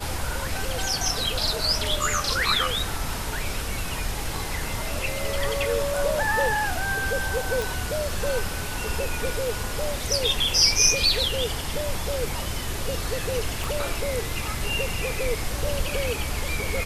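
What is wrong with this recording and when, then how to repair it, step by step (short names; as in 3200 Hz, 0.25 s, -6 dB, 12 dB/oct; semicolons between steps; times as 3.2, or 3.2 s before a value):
7.62 pop
13.64 pop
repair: de-click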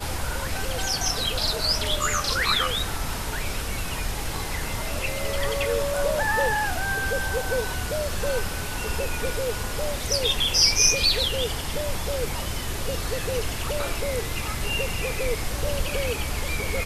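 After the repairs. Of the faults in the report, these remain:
13.64 pop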